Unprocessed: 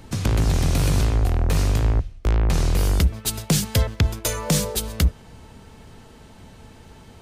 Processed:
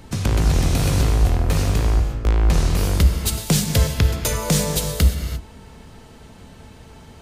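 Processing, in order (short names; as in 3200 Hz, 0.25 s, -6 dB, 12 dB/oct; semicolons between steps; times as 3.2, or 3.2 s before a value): non-linear reverb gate 0.37 s flat, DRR 4.5 dB; gain +1 dB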